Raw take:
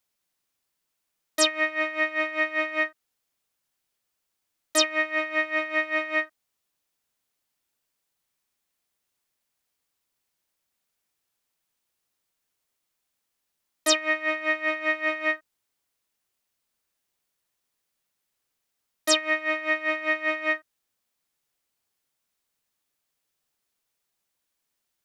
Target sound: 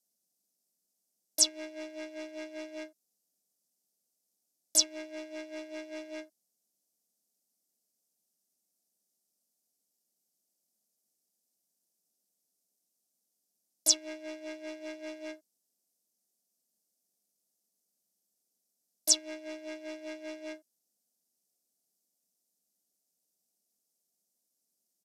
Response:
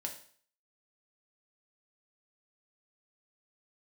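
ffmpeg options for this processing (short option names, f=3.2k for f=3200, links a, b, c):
-filter_complex "[0:a]lowshelf=f=140:t=q:w=3:g=-11.5,aresample=32000,aresample=44100,firequalizer=gain_entry='entry(410,0);entry(720,2);entry(1000,-16);entry(1500,-21);entry(5300,9)':delay=0.05:min_phase=1,acrossover=split=440|1200[a][b][c];[a]asoftclip=type=tanh:threshold=-38.5dB[d];[b]acompressor=threshold=-40dB:ratio=6[e];[c]aeval=exprs='val(0)*sin(2*PI*250*n/s)':c=same[f];[d][e][f]amix=inputs=3:normalize=0,volume=-4.5dB"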